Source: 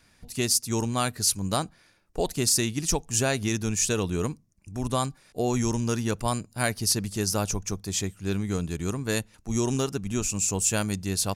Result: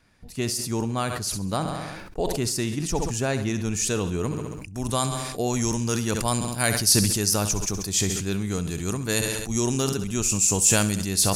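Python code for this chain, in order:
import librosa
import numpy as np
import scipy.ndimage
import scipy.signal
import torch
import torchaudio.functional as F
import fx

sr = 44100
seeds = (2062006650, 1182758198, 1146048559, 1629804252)

y = fx.high_shelf(x, sr, hz=3100.0, db=fx.steps((0.0, -8.0), (3.64, -2.0), (4.74, 6.0)))
y = fx.echo_feedback(y, sr, ms=67, feedback_pct=53, wet_db=-15)
y = fx.sustainer(y, sr, db_per_s=34.0)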